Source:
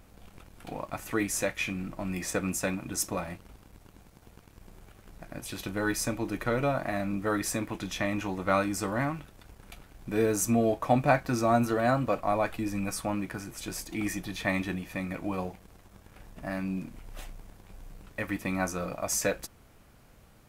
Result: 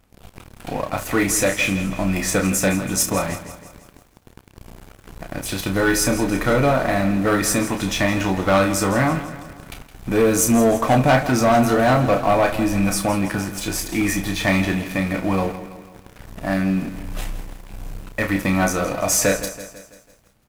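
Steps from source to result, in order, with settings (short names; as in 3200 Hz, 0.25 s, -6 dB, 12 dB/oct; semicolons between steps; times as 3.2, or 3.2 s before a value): early reflections 31 ms -6.5 dB, 72 ms -17.5 dB; sample leveller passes 3; lo-fi delay 0.165 s, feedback 55%, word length 8-bit, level -13 dB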